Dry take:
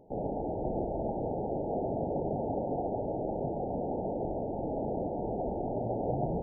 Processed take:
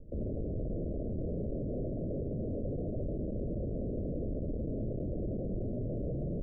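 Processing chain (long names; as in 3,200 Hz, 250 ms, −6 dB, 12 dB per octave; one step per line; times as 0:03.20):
comparator with hysteresis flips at −32.5 dBFS
background noise brown −45 dBFS
Butterworth low-pass 620 Hz 72 dB per octave
level −1 dB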